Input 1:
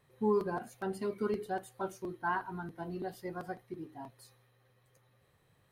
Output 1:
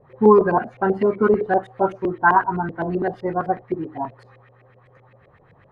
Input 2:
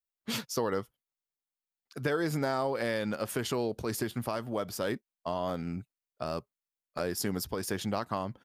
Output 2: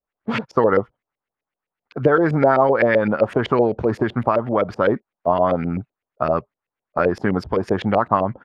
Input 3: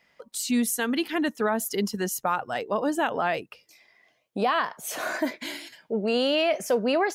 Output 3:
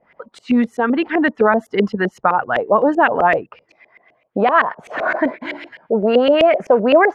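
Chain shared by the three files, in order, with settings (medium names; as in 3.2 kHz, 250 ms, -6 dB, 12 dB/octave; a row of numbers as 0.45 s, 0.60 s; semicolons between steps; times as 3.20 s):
LFO low-pass saw up 7.8 Hz 480–2500 Hz; peak normalisation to -1.5 dBFS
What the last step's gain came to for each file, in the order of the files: +15.0 dB, +12.0 dB, +8.0 dB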